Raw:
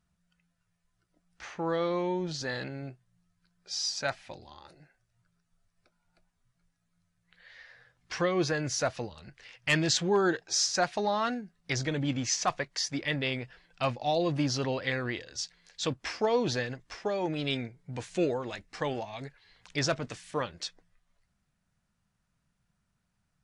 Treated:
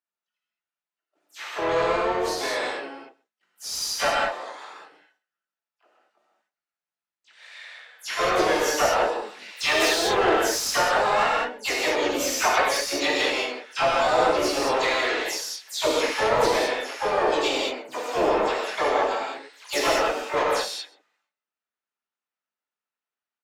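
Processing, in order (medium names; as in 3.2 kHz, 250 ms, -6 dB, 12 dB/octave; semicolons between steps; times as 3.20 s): delay that grows with frequency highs early, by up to 100 ms; gate with hold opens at -59 dBFS; elliptic band-pass 260–7400 Hz, stop band 50 dB; peaking EQ 1.7 kHz -2 dB 0.3 oct; harmony voices +4 st -4 dB, +12 st -4 dB; dynamic bell 500 Hz, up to +5 dB, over -40 dBFS, Q 0.9; overdrive pedal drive 19 dB, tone 2.8 kHz, clips at -9 dBFS; harmonic-percussive split harmonic -7 dB; on a send: delay 129 ms -23.5 dB; on the sum: gated-style reverb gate 240 ms flat, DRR -4 dB; trim -4 dB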